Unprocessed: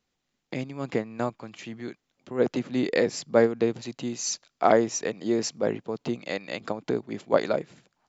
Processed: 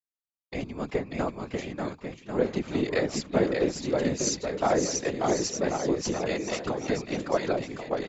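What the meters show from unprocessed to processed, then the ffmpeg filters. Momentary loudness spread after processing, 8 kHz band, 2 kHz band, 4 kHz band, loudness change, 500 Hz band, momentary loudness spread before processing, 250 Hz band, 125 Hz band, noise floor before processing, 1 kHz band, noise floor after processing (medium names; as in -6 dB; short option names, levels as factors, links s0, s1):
9 LU, no reading, -0.5 dB, +1.0 dB, -1.5 dB, -2.0 dB, 15 LU, -0.5 dB, +2.5 dB, -80 dBFS, -1.5 dB, under -85 dBFS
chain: -filter_complex "[0:a]acompressor=threshold=0.0631:ratio=2,asplit=2[s0][s1];[s1]aecho=0:1:590|1092|1518|1880|2188:0.631|0.398|0.251|0.158|0.1[s2];[s0][s2]amix=inputs=2:normalize=0,agate=range=0.0224:threshold=0.0178:ratio=3:detection=peak,afftfilt=real='hypot(re,im)*cos(2*PI*random(0))':imag='hypot(re,im)*sin(2*PI*random(1))':win_size=512:overlap=0.75,volume=2"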